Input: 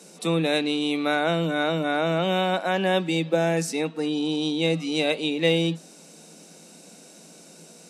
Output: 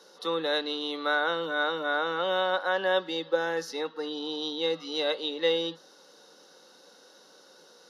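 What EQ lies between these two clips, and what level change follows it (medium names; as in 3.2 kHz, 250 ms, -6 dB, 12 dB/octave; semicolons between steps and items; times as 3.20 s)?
resonant high-pass 590 Hz, resonance Q 4.9; treble shelf 8.2 kHz -10 dB; static phaser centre 2.4 kHz, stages 6; 0.0 dB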